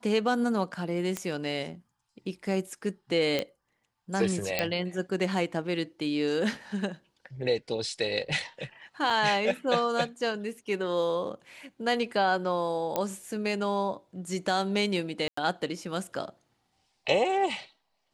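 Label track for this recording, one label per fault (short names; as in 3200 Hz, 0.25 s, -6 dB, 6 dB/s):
1.170000	1.170000	pop -15 dBFS
3.390000	3.390000	pop -14 dBFS
4.590000	4.590000	pop -10 dBFS
9.100000	9.100000	gap 4.2 ms
12.960000	12.960000	pop -13 dBFS
15.280000	15.370000	gap 94 ms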